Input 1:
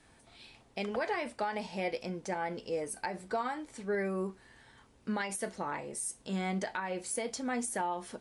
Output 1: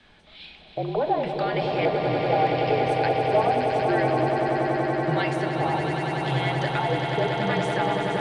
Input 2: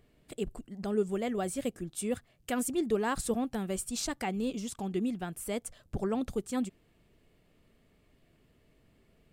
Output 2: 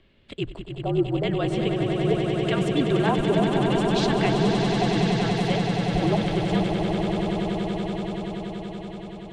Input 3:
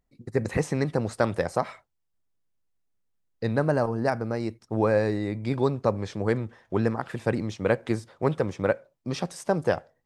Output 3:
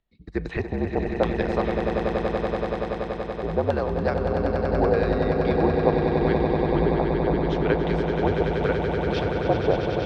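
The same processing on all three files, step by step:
frequency shifter −58 Hz
auto-filter low-pass square 0.81 Hz 760–3,400 Hz
echo that builds up and dies away 95 ms, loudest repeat 8, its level −7.5 dB
loudness normalisation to −24 LKFS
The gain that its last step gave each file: +5.5, +5.0, −2.5 decibels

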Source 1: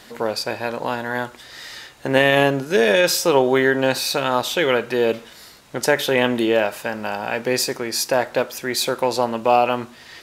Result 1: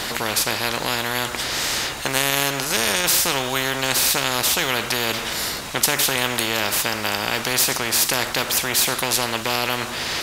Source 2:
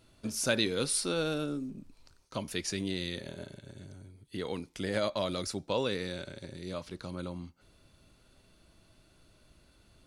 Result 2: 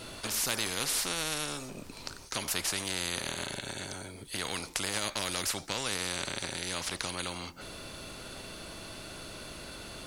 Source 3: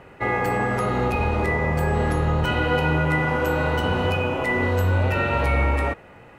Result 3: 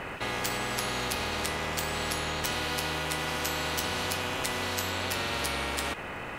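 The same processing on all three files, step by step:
every bin compressed towards the loudest bin 4 to 1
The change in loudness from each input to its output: 0.0, 0.0, −8.0 LU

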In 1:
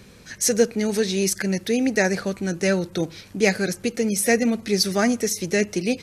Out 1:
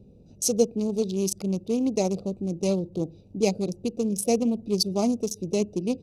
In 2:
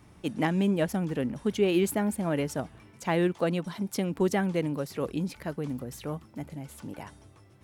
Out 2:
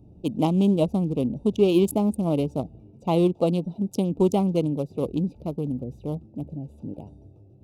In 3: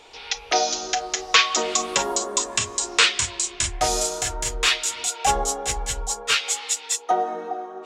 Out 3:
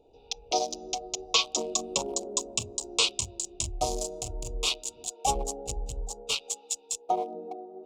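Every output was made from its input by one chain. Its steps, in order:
adaptive Wiener filter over 41 samples
Butterworth band-reject 1,700 Hz, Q 0.87
normalise the peak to −9 dBFS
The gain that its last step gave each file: −2.5, +6.0, −3.5 decibels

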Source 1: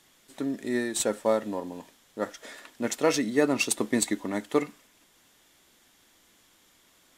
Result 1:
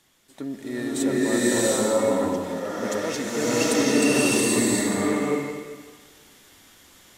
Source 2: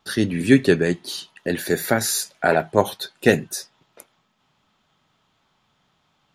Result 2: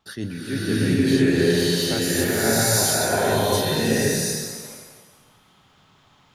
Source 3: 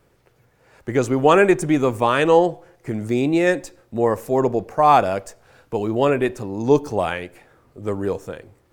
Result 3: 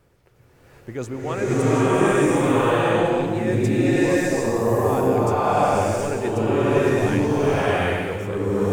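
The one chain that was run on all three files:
parametric band 81 Hz +5 dB 1.7 octaves
reversed playback
downward compressor, threshold −24 dBFS
reversed playback
slow-attack reverb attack 740 ms, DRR −11 dB
level −2 dB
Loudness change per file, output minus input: +5.5, +0.5, −0.5 LU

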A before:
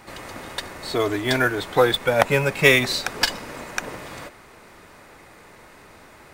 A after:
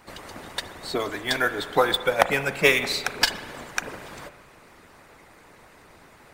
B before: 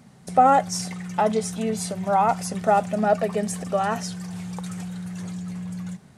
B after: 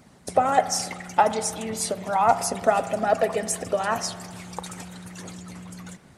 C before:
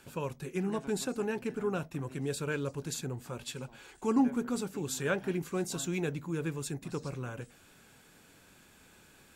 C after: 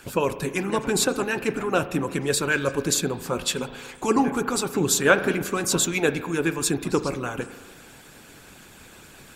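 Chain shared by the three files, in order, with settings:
harmonic and percussive parts rebalanced harmonic −14 dB
spring reverb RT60 1.5 s, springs 36 ms, chirp 55 ms, DRR 11.5 dB
loudness normalisation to −24 LKFS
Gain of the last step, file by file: 0.0, +5.5, +16.0 decibels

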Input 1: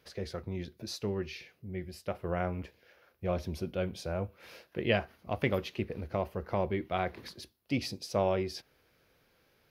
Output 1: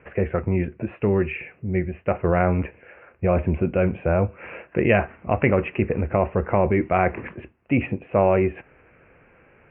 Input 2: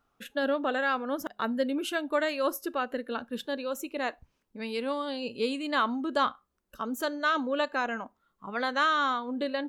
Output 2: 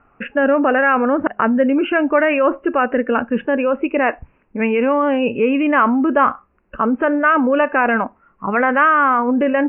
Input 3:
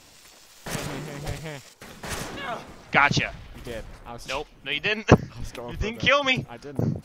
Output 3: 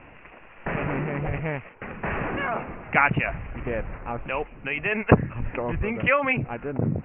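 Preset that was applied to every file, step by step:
in parallel at −1 dB: compressor whose output falls as the input rises −34 dBFS, ratio −1
on the sum: Butterworth low-pass 2,700 Hz 96 dB per octave
normalise the peak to −3 dBFS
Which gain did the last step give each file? +8.5, +11.0, −1.0 decibels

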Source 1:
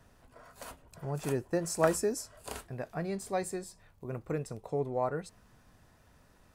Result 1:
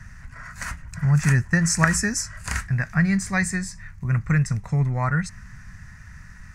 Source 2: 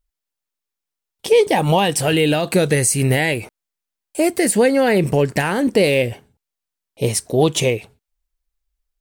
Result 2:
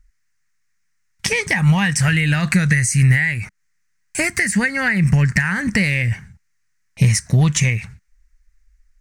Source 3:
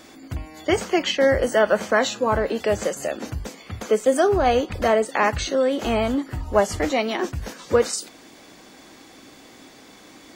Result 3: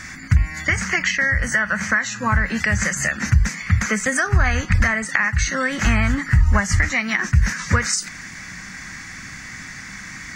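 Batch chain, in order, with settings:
drawn EQ curve 190 Hz 0 dB, 280 Hz −15 dB, 430 Hz −21 dB, 700 Hz −14 dB, 1,900 Hz +12 dB, 3,300 Hz −9 dB, 6,100 Hz +5 dB, 13,000 Hz −11 dB
downward compressor 6 to 1, threshold −28 dBFS
low-shelf EQ 210 Hz +10 dB
normalise the peak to −1.5 dBFS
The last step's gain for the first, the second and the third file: +13.0, +10.5, +10.5 decibels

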